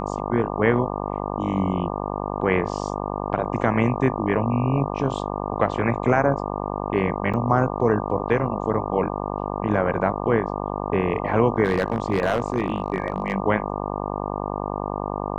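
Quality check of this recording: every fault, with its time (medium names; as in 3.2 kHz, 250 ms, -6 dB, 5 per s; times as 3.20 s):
buzz 50 Hz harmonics 24 -28 dBFS
7.33–7.34 s: dropout 6.7 ms
11.65–13.34 s: clipped -14.5 dBFS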